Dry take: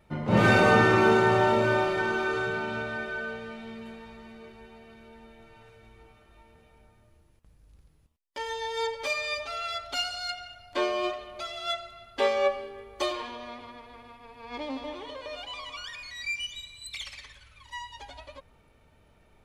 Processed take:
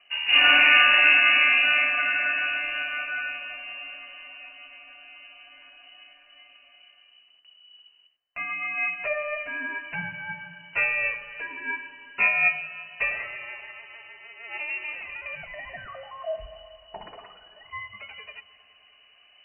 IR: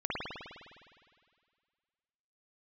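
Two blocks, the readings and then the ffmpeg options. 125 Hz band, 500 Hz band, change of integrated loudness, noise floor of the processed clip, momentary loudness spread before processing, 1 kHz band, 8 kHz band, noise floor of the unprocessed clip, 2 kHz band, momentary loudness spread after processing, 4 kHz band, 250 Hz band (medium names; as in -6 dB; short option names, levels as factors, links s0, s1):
-18.5 dB, -10.5 dB, +6.0 dB, -58 dBFS, 22 LU, -3.5 dB, under -35 dB, -61 dBFS, +9.0 dB, 24 LU, +8.5 dB, -16.0 dB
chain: -filter_complex "[0:a]lowpass=f=2600:t=q:w=0.5098,lowpass=f=2600:t=q:w=0.6013,lowpass=f=2600:t=q:w=0.9,lowpass=f=2600:t=q:w=2.563,afreqshift=-3000,bandreject=f=60:t=h:w=6,bandreject=f=120:t=h:w=6,bandreject=f=180:t=h:w=6,bandreject=f=240:t=h:w=6,bandreject=f=300:t=h:w=6,asplit=2[s0][s1];[1:a]atrim=start_sample=2205,asetrate=22932,aresample=44100[s2];[s1][s2]afir=irnorm=-1:irlink=0,volume=0.0447[s3];[s0][s3]amix=inputs=2:normalize=0,volume=1.33"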